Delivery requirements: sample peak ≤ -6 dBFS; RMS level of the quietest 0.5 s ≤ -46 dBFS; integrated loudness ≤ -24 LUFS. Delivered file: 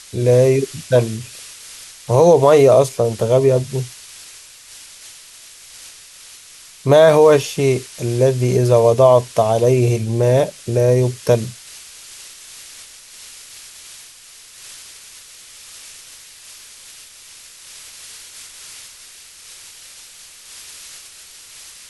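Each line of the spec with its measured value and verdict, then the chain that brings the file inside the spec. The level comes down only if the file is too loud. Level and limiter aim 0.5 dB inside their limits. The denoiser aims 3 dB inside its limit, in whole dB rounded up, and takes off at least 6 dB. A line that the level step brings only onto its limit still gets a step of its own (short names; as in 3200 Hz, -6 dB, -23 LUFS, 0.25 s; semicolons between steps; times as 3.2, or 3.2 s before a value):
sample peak -1.5 dBFS: fail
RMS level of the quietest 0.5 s -43 dBFS: fail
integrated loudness -15.0 LUFS: fail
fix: gain -9.5 dB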